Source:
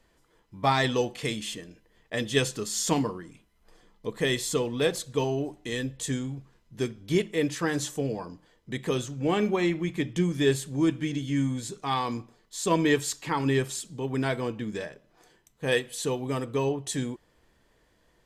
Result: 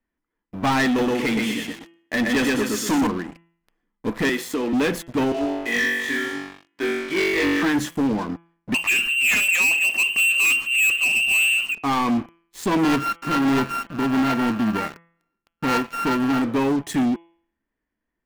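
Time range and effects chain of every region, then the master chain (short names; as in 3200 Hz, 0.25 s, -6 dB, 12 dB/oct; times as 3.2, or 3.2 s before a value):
0.86–3.07 HPF 220 Hz 6 dB/oct + feedback echo 0.122 s, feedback 37%, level -3 dB
4.29–4.73 HPF 270 Hz 24 dB/oct + compressor 4:1, threshold -29 dBFS
5.32–7.63 BPF 620–3600 Hz + flutter echo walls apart 3.6 m, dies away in 1.1 s
8.74–11.75 low shelf 340 Hz +9.5 dB + inverted band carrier 2900 Hz
12.83–16.42 sample sorter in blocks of 32 samples + LPF 3400 Hz 6 dB/oct
whole clip: graphic EQ 125/250/500/2000/4000/8000 Hz -8/+10/-7/+5/-9/-12 dB; sample leveller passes 5; de-hum 168.3 Hz, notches 20; gain -7 dB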